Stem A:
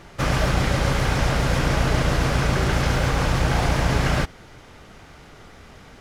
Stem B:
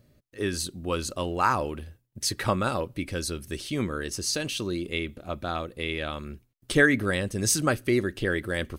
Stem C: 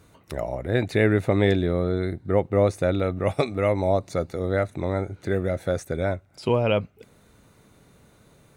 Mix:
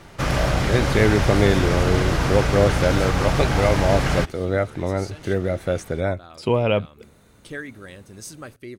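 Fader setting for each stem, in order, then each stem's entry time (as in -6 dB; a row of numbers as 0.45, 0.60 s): -0.5, -14.0, +2.0 dB; 0.00, 0.75, 0.00 s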